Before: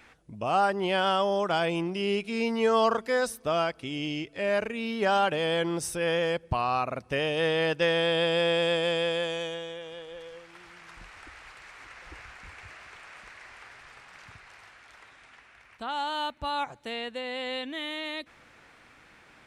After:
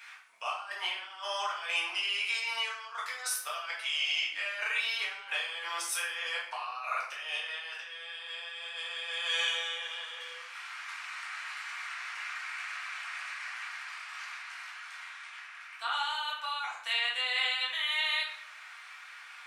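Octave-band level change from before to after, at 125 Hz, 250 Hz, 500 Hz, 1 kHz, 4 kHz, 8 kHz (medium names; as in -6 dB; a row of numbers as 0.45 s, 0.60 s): under -40 dB, under -35 dB, -22.0 dB, -8.0 dB, +1.5 dB, +3.0 dB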